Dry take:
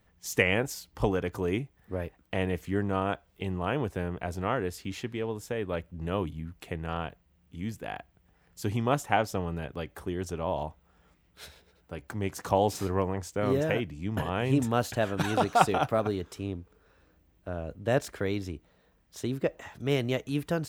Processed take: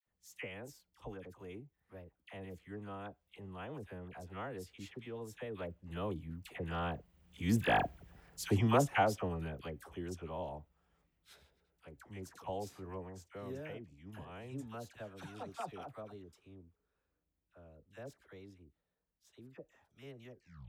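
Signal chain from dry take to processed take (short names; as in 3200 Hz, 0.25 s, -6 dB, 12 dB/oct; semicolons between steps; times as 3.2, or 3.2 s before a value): tape stop at the end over 0.54 s; Doppler pass-by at 7.83, 9 m/s, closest 2.3 m; dispersion lows, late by 68 ms, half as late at 1000 Hz; gain +9 dB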